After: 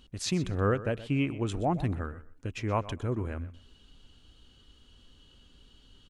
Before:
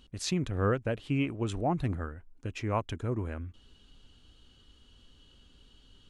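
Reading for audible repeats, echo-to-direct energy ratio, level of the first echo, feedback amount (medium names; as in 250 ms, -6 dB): 2, -16.0 dB, -16.0 dB, 20%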